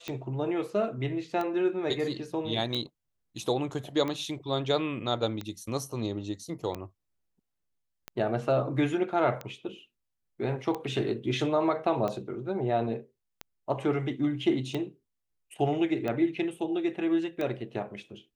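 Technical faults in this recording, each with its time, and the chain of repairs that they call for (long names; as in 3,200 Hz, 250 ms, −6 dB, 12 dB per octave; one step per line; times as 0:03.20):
scratch tick 45 rpm −20 dBFS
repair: click removal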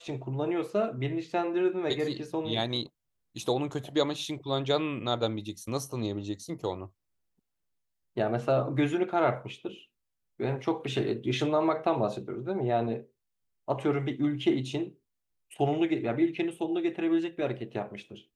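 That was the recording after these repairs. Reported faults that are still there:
none of them is left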